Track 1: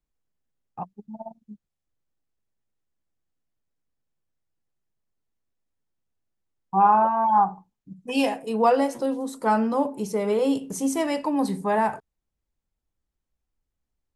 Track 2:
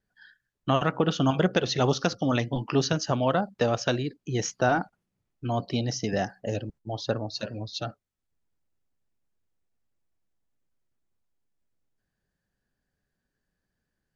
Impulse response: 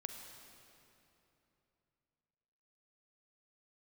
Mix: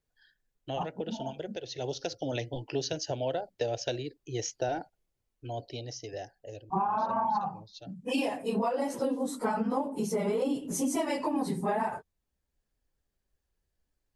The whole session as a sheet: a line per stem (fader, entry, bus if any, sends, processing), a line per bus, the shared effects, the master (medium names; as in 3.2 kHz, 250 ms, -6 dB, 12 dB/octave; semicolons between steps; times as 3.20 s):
0.0 dB, 0.00 s, no send, phase randomisation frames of 50 ms; compression, threshold -20 dBFS, peak gain reduction 8.5 dB
-3.0 dB, 0.00 s, no send, static phaser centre 490 Hz, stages 4; auto duck -10 dB, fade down 1.55 s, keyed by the first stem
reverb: none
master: compression 5:1, threshold -26 dBFS, peak gain reduction 7.5 dB